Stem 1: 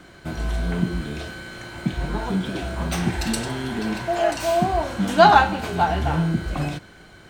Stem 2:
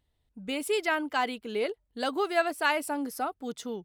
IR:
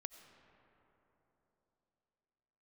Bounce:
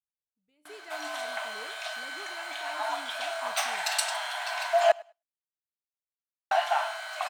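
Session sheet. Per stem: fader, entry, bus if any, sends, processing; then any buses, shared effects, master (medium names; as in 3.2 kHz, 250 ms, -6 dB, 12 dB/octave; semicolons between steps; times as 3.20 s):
+1.5 dB, 0.65 s, muted 4.92–6.51 s, no send, echo send -24 dB, Chebyshev high-pass 610 Hz, order 8
-11.0 dB, 0.00 s, no send, echo send -19 dB, peaking EQ 160 Hz +10 dB 0.21 oct; feedback comb 150 Hz, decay 0.44 s, harmonics all, mix 70%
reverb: none
echo: feedback delay 103 ms, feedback 20%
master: gate with hold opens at -39 dBFS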